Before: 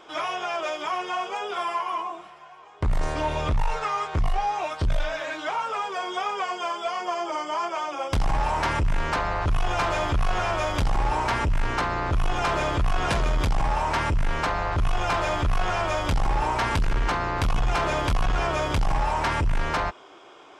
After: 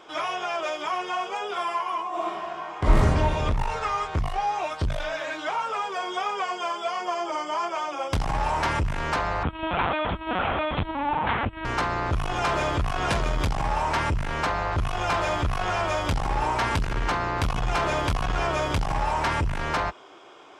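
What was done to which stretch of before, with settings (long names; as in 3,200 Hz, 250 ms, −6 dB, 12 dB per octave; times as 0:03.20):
0:02.09–0:02.96: thrown reverb, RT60 1.9 s, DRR −11 dB
0:09.43–0:11.65: linear-prediction vocoder at 8 kHz pitch kept
whole clip: high-pass filter 42 Hz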